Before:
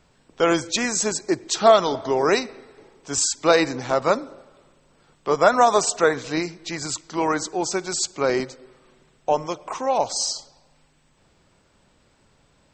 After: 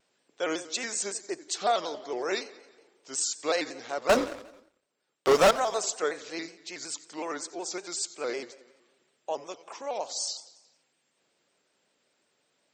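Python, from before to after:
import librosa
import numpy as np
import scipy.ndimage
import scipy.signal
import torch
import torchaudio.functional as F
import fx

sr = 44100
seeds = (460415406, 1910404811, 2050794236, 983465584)

y = scipy.signal.sosfilt(scipy.signal.butter(2, 400.0, 'highpass', fs=sr, output='sos'), x)
y = fx.peak_eq(y, sr, hz=990.0, db=-7.0, octaves=1.2)
y = fx.leveller(y, sr, passes=5, at=(4.09, 5.51))
y = fx.echo_feedback(y, sr, ms=89, feedback_pct=59, wet_db=-18.5)
y = fx.vibrato_shape(y, sr, shape='square', rate_hz=5.4, depth_cents=100.0)
y = y * librosa.db_to_amplitude(-7.5)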